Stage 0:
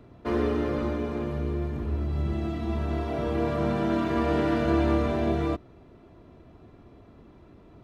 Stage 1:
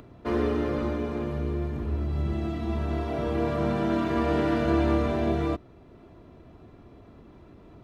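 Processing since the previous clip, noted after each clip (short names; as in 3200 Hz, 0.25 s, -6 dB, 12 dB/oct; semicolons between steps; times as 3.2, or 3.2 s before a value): upward compressor, threshold -45 dBFS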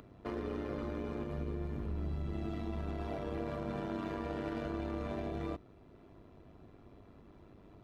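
limiter -24 dBFS, peak gain reduction 11 dB; AM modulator 100 Hz, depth 45%; gain -4 dB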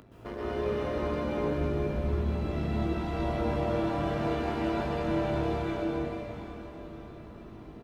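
doubler 19 ms -5 dB; plate-style reverb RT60 4.7 s, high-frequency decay 1×, pre-delay 0.11 s, DRR -8.5 dB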